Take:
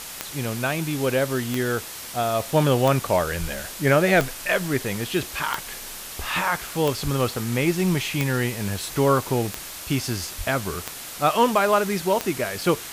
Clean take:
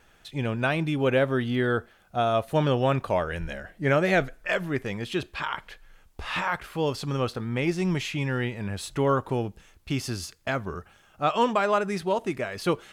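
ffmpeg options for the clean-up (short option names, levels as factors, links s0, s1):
-filter_complex "[0:a]adeclick=t=4,asplit=3[s0][s1][s2];[s0]afade=t=out:st=7.03:d=0.02[s3];[s1]highpass=f=140:w=0.5412,highpass=f=140:w=1.3066,afade=t=in:st=7.03:d=0.02,afade=t=out:st=7.15:d=0.02[s4];[s2]afade=t=in:st=7.15:d=0.02[s5];[s3][s4][s5]amix=inputs=3:normalize=0,asplit=3[s6][s7][s8];[s6]afade=t=out:st=10.37:d=0.02[s9];[s7]highpass=f=140:w=0.5412,highpass=f=140:w=1.3066,afade=t=in:st=10.37:d=0.02,afade=t=out:st=10.49:d=0.02[s10];[s8]afade=t=in:st=10.49:d=0.02[s11];[s9][s10][s11]amix=inputs=3:normalize=0,afwtdn=0.018,asetnsamples=n=441:p=0,asendcmd='2.4 volume volume -4dB',volume=1"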